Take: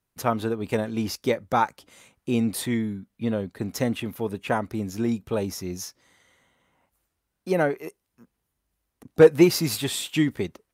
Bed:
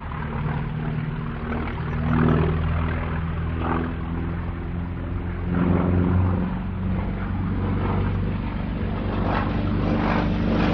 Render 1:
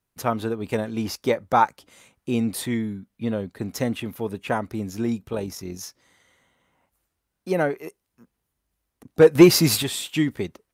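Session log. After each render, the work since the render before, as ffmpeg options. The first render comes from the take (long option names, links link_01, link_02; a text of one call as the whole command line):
ffmpeg -i in.wav -filter_complex "[0:a]asettb=1/sr,asplit=3[link_01][link_02][link_03];[link_01]atrim=end=1.054[link_04];[link_02]atrim=start=1.05:end=1.65,asetpts=PTS-STARTPTS,afade=type=in:duration=0.004:curve=qsin,afade=type=out:start_time=0.596:duration=0.004:curve=qsin,equalizer=frequency=890:width_type=o:width=1.6:gain=4.5[link_05];[link_03]atrim=start=1.646[link_06];[link_04][link_05]acrossfade=duration=0.004:curve1=hsin:curve2=qsin[link_07];[link_07][link_06]acrossfade=duration=0.004:curve1=qsin:curve2=hsin,asettb=1/sr,asplit=3[link_08][link_09][link_10];[link_08]atrim=end=5.284[link_11];[link_09]atrim=start=5.28:end=5.83,asetpts=PTS-STARTPTS,afade=type=in:duration=0.004:curve=qsin,afade=type=out:start_time=0.546:duration=0.004:curve=qsin,tremolo=f=45:d=0.462[link_12];[link_10]atrim=start=5.826[link_13];[link_11][link_12]acrossfade=duration=0.004:curve1=hsin:curve2=qsin[link_14];[link_14][link_13]acrossfade=duration=0.004:curve1=qsin:curve2=hsin,asettb=1/sr,asplit=3[link_15][link_16][link_17];[link_15]atrim=end=9.354[link_18];[link_16]atrim=start=9.35:end=9.83,asetpts=PTS-STARTPTS,afade=type=in:duration=0.004:curve=qsin,afade=type=out:start_time=0.476:duration=0.004:curve=qsin,acontrast=77[link_19];[link_17]atrim=start=9.826[link_20];[link_18][link_19]acrossfade=duration=0.004:curve1=hsin:curve2=qsin[link_21];[link_21][link_20]acrossfade=duration=0.004:curve1=qsin:curve2=hsin" out.wav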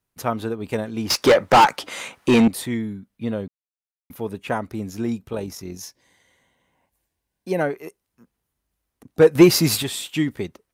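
ffmpeg -i in.wav -filter_complex "[0:a]asettb=1/sr,asplit=3[link_01][link_02][link_03];[link_01]atrim=end=1.104[link_04];[link_02]atrim=start=1.1:end=2.48,asetpts=PTS-STARTPTS,afade=type=in:duration=0.004:curve=qsin,afade=type=out:start_time=1.376:duration=0.004:curve=qsin,asplit=2[link_05][link_06];[link_06]highpass=frequency=720:poles=1,volume=29dB,asoftclip=type=tanh:threshold=-5dB[link_07];[link_05][link_07]amix=inputs=2:normalize=0,lowpass=frequency=3400:poles=1,volume=-6dB[link_08];[link_03]atrim=start=2.476[link_09];[link_04][link_08]acrossfade=duration=0.004:curve1=hsin:curve2=qsin[link_10];[link_10][link_09]acrossfade=duration=0.004:curve1=qsin:curve2=hsin,asettb=1/sr,asplit=3[link_11][link_12][link_13];[link_11]atrim=end=5.774[link_14];[link_12]atrim=start=5.77:end=7.61,asetpts=PTS-STARTPTS,afade=type=in:duration=0.004:curve=qsin,afade=type=out:start_time=1.836:duration=0.004:curve=qsin,asuperstop=centerf=1300:order=4:qfactor=4.7[link_15];[link_13]atrim=start=7.606[link_16];[link_14][link_15]acrossfade=duration=0.004:curve1=hsin:curve2=qsin[link_17];[link_17][link_16]acrossfade=duration=0.004:curve1=qsin:curve2=hsin,asplit=3[link_18][link_19][link_20];[link_18]atrim=end=3.48,asetpts=PTS-STARTPTS,afade=type=out:start_time=3.476:duration=0.004:curve=hsin[link_21];[link_19]atrim=start=3.48:end=4.1,asetpts=PTS-STARTPTS,volume=0[link_22];[link_20]atrim=start=4.1,asetpts=PTS-STARTPTS,afade=type=in:duration=0.004:curve=hsin[link_23];[link_21][link_22][link_23]concat=n=3:v=0:a=1" out.wav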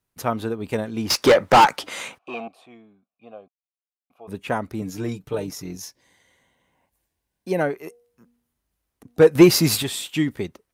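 ffmpeg -i in.wav -filter_complex "[0:a]asplit=3[link_01][link_02][link_03];[link_01]afade=type=out:start_time=2.17:duration=0.02[link_04];[link_02]asplit=3[link_05][link_06][link_07];[link_05]bandpass=frequency=730:width_type=q:width=8,volume=0dB[link_08];[link_06]bandpass=frequency=1090:width_type=q:width=8,volume=-6dB[link_09];[link_07]bandpass=frequency=2440:width_type=q:width=8,volume=-9dB[link_10];[link_08][link_09][link_10]amix=inputs=3:normalize=0,afade=type=in:start_time=2.17:duration=0.02,afade=type=out:start_time=4.27:duration=0.02[link_11];[link_03]afade=type=in:start_time=4.27:duration=0.02[link_12];[link_04][link_11][link_12]amix=inputs=3:normalize=0,asettb=1/sr,asplit=3[link_13][link_14][link_15];[link_13]atrim=end=4.814[link_16];[link_14]atrim=start=4.81:end=5.76,asetpts=PTS-STARTPTS,afade=type=in:duration=0.004:curve=qsin,afade=type=out:start_time=0.946:duration=0.004:curve=qsin,aecho=1:1:6.7:0.65,atrim=end_sample=41895[link_17];[link_15]atrim=start=5.756[link_18];[link_16][link_17]acrossfade=duration=0.004:curve1=hsin:curve2=qsin[link_19];[link_19][link_18]acrossfade=duration=0.004:curve1=qsin:curve2=hsin,asettb=1/sr,asplit=3[link_20][link_21][link_22];[link_20]atrim=end=7.754[link_23];[link_21]atrim=start=7.75:end=9.2,asetpts=PTS-STARTPTS,afade=type=in:duration=0.004:curve=qsin,afade=type=out:start_time=1.446:duration=0.004:curve=qsin,bandreject=frequency=239:width_type=h:width=4,bandreject=frequency=478:width_type=h:width=4,bandreject=frequency=717:width_type=h:width=4[link_24];[link_22]atrim=start=9.196[link_25];[link_23][link_24]acrossfade=duration=0.004:curve1=hsin:curve2=qsin[link_26];[link_26][link_25]acrossfade=duration=0.004:curve1=qsin:curve2=hsin" out.wav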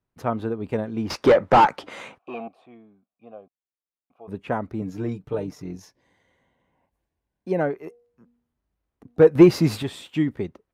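ffmpeg -i in.wav -af "lowpass=frequency=1200:poles=1" out.wav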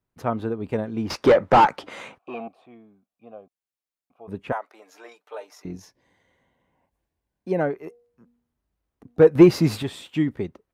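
ffmpeg -i in.wav -filter_complex "[0:a]asettb=1/sr,asplit=3[link_01][link_02][link_03];[link_01]atrim=end=4.524[link_04];[link_02]atrim=start=4.52:end=5.65,asetpts=PTS-STARTPTS,afade=type=in:duration=0.004:curve=qsin,afade=type=out:start_time=1.126:duration=0.004:curve=qsin,highpass=frequency=630:width=0.5412,highpass=frequency=630:width=1.3066[link_05];[link_03]atrim=start=5.646[link_06];[link_04][link_05]acrossfade=duration=0.004:curve1=hsin:curve2=qsin[link_07];[link_07][link_06]acrossfade=duration=0.004:curve1=qsin:curve2=hsin" out.wav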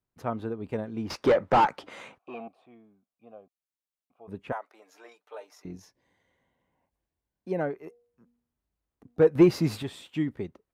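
ffmpeg -i in.wav -af "volume=-6dB" out.wav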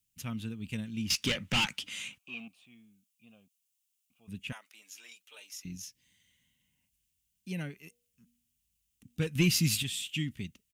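ffmpeg -i in.wav -af "firequalizer=gain_entry='entry(210,0);entry(360,-17);entry(690,-21);entry(2800,13);entry(4100,7);entry(6700,15)':delay=0.05:min_phase=1" out.wav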